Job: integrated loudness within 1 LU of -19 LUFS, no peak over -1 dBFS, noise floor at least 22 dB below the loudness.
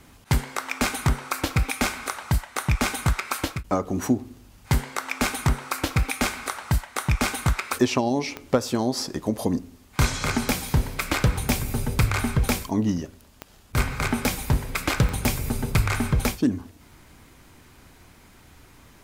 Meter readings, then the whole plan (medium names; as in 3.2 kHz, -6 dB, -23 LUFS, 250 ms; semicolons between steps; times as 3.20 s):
clicks found 4; loudness -25.5 LUFS; peak level -6.5 dBFS; loudness target -19.0 LUFS
-> de-click; trim +6.5 dB; peak limiter -1 dBFS